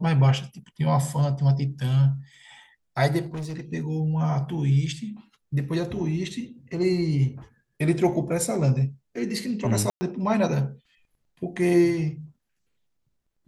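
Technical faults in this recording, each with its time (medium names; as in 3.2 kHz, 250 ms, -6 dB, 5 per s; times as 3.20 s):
3.25–3.61 s: clipped -29 dBFS
9.90–10.01 s: dropout 110 ms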